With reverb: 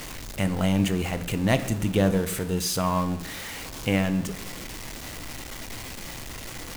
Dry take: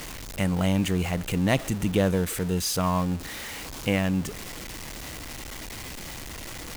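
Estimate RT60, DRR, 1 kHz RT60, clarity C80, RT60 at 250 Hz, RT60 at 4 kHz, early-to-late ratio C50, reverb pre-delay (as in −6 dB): 0.80 s, 9.5 dB, 0.70 s, 16.0 dB, 1.0 s, 0.45 s, 13.5 dB, 8 ms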